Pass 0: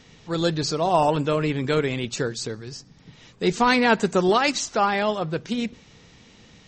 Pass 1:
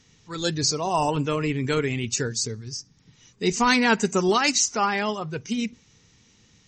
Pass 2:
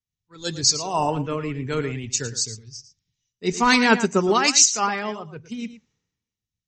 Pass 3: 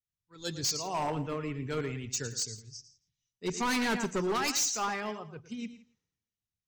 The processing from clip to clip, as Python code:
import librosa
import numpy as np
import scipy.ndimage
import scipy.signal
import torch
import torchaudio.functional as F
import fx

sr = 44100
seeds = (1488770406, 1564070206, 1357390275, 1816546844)

y1 = fx.noise_reduce_blind(x, sr, reduce_db=9)
y1 = fx.graphic_eq_15(y1, sr, hz=(100, 630, 6300), db=(5, -7, 9))
y2 = y1 + 10.0 ** (-11.0 / 20.0) * np.pad(y1, (int(113 * sr / 1000.0), 0))[:len(y1)]
y2 = fx.band_widen(y2, sr, depth_pct=100)
y2 = y2 * 10.0 ** (-1.0 / 20.0)
y3 = np.clip(y2, -10.0 ** (-19.0 / 20.0), 10.0 ** (-19.0 / 20.0))
y3 = y3 + 10.0 ** (-21.0 / 20.0) * np.pad(y3, (int(167 * sr / 1000.0), 0))[:len(y3)]
y3 = y3 * 10.0 ** (-7.5 / 20.0)